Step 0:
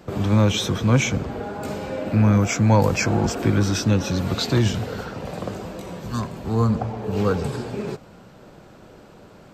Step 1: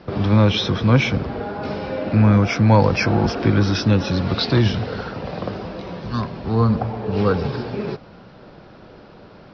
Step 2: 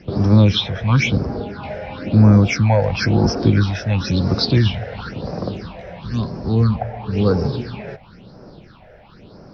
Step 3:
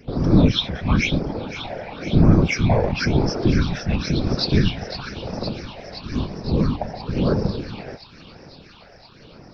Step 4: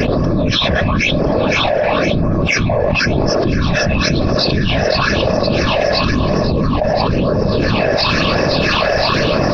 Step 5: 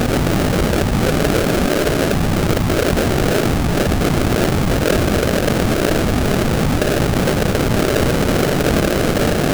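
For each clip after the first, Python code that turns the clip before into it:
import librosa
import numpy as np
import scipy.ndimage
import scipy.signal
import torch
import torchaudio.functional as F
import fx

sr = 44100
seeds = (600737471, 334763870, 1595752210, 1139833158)

y1 = scipy.signal.sosfilt(scipy.signal.cheby1(6, 1.0, 5400.0, 'lowpass', fs=sr, output='sos'), x)
y1 = y1 * 10.0 ** (3.5 / 20.0)
y2 = fx.high_shelf(y1, sr, hz=4900.0, db=8.0)
y2 = fx.phaser_stages(y2, sr, stages=6, low_hz=280.0, high_hz=3100.0, hz=0.98, feedback_pct=45)
y2 = y2 * 10.0 ** (1.0 / 20.0)
y3 = fx.echo_wet_highpass(y2, sr, ms=513, feedback_pct=77, hz=1900.0, wet_db=-10.5)
y3 = fx.whisperise(y3, sr, seeds[0])
y3 = y3 * 10.0 ** (-3.0 / 20.0)
y4 = fx.small_body(y3, sr, hz=(610.0, 1100.0, 1700.0, 2600.0), ring_ms=30, db=11)
y4 = fx.env_flatten(y4, sr, amount_pct=100)
y4 = y4 * 10.0 ** (-5.5 / 20.0)
y5 = y4 + 0.5 * 10.0 ** (-13.5 / 20.0) * np.diff(np.sign(y4), prepend=np.sign(y4[:1]))
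y5 = fx.sample_hold(y5, sr, seeds[1], rate_hz=1000.0, jitter_pct=20)
y5 = y5 * 10.0 ** (-1.5 / 20.0)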